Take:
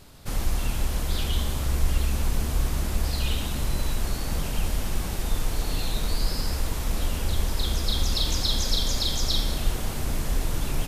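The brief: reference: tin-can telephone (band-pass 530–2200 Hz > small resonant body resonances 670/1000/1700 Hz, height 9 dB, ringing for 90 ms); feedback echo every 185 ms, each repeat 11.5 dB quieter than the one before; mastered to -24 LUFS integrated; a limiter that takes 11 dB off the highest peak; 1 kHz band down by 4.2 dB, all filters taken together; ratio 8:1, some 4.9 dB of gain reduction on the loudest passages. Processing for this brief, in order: peaking EQ 1 kHz -4.5 dB; compression 8:1, threshold -22 dBFS; peak limiter -25.5 dBFS; band-pass 530–2200 Hz; feedback delay 185 ms, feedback 27%, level -11.5 dB; small resonant body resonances 670/1000/1700 Hz, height 9 dB, ringing for 90 ms; trim +23 dB

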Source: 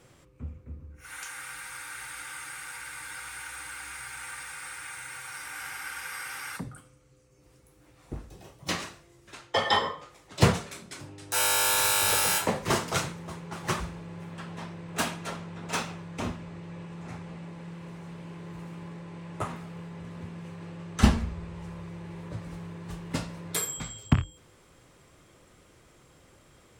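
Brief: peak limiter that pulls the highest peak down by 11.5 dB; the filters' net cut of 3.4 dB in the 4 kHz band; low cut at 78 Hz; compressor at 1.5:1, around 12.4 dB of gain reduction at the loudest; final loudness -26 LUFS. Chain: high-pass 78 Hz; peaking EQ 4 kHz -4.5 dB; compression 1.5:1, threshold -52 dBFS; trim +18.5 dB; peak limiter -12 dBFS

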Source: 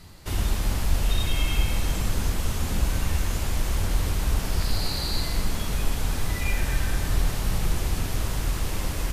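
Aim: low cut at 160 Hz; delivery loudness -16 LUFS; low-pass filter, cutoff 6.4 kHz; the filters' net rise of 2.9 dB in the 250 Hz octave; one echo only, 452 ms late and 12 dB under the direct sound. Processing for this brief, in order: high-pass 160 Hz; low-pass 6.4 kHz; peaking EQ 250 Hz +5.5 dB; delay 452 ms -12 dB; trim +15.5 dB

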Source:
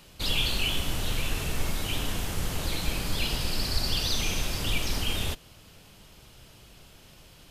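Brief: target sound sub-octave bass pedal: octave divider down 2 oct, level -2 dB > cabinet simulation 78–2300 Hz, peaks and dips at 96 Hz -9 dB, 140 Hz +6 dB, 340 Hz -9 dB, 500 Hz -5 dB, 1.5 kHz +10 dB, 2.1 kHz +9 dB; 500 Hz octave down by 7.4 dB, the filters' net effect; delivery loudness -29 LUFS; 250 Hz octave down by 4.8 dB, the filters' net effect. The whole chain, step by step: peaking EQ 250 Hz -6 dB; peaking EQ 500 Hz -3.5 dB; octave divider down 2 oct, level -2 dB; cabinet simulation 78–2300 Hz, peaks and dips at 96 Hz -9 dB, 140 Hz +6 dB, 340 Hz -9 dB, 500 Hz -5 dB, 1.5 kHz +10 dB, 2.1 kHz +9 dB; trim +4.5 dB

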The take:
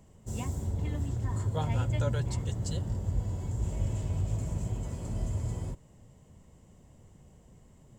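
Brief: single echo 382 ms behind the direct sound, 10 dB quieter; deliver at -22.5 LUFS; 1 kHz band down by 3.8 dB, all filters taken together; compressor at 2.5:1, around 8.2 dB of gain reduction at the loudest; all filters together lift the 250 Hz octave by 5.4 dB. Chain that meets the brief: peaking EQ 250 Hz +8 dB; peaking EQ 1 kHz -5.5 dB; compression 2.5:1, threshold -36 dBFS; delay 382 ms -10 dB; trim +15.5 dB

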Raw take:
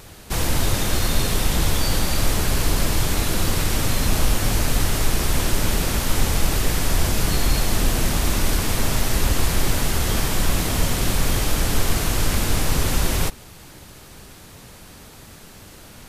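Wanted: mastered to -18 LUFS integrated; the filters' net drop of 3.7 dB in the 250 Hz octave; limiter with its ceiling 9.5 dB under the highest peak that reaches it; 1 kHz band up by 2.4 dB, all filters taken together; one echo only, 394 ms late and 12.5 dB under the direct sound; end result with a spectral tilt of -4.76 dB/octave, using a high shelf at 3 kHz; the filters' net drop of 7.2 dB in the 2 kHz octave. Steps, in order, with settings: peaking EQ 250 Hz -5.5 dB; peaking EQ 1 kHz +6.5 dB; peaking EQ 2 kHz -8.5 dB; treble shelf 3 kHz -8.5 dB; peak limiter -16 dBFS; delay 394 ms -12.5 dB; trim +10.5 dB

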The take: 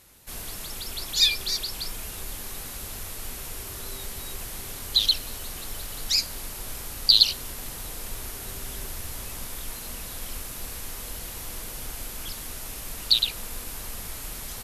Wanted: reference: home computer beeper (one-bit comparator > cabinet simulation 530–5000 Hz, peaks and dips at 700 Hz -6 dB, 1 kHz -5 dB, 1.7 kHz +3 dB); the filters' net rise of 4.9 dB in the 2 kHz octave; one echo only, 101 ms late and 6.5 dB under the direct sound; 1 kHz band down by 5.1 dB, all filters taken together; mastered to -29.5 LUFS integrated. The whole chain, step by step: peaking EQ 1 kHz -5 dB; peaking EQ 2 kHz +6.5 dB; delay 101 ms -6.5 dB; one-bit comparator; cabinet simulation 530–5000 Hz, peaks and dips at 700 Hz -6 dB, 1 kHz -5 dB, 1.7 kHz +3 dB; trim +2.5 dB

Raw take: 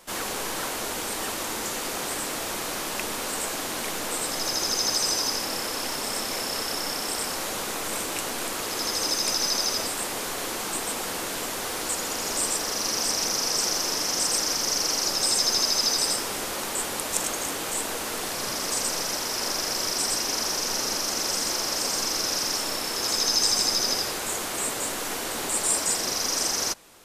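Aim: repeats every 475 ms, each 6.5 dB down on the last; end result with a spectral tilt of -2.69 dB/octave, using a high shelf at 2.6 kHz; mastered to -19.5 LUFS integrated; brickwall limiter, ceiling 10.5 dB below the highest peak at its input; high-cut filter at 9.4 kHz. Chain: low-pass 9.4 kHz; treble shelf 2.6 kHz -3.5 dB; peak limiter -19.5 dBFS; feedback delay 475 ms, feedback 47%, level -6.5 dB; trim +8.5 dB

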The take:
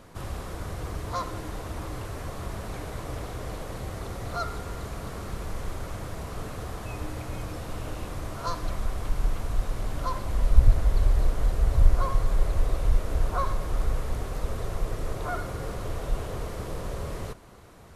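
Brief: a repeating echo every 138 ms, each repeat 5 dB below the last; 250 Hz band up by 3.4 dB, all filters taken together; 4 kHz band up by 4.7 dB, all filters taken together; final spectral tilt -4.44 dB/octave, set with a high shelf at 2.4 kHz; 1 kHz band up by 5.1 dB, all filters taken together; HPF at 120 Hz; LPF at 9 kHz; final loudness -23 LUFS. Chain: high-pass 120 Hz; low-pass 9 kHz; peaking EQ 250 Hz +5 dB; peaking EQ 1 kHz +6 dB; treble shelf 2.4 kHz -3.5 dB; peaking EQ 4 kHz +8.5 dB; feedback delay 138 ms, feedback 56%, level -5 dB; trim +9 dB

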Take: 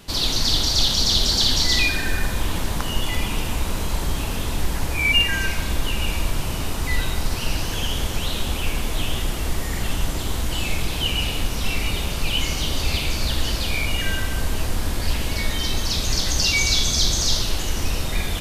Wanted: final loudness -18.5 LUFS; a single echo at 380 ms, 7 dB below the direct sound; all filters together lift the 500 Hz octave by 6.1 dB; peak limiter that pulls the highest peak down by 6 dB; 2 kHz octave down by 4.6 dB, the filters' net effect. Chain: peaking EQ 500 Hz +8 dB; peaking EQ 2 kHz -6.5 dB; peak limiter -11 dBFS; delay 380 ms -7 dB; trim +5 dB

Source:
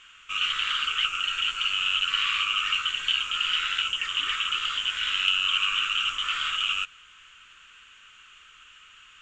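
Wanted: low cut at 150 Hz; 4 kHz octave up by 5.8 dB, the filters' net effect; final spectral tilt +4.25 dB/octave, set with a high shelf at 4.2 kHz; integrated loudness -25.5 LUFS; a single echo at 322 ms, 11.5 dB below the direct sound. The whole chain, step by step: high-pass 150 Hz; peaking EQ 4 kHz +5.5 dB; treble shelf 4.2 kHz +7.5 dB; delay 322 ms -11.5 dB; trim -6.5 dB

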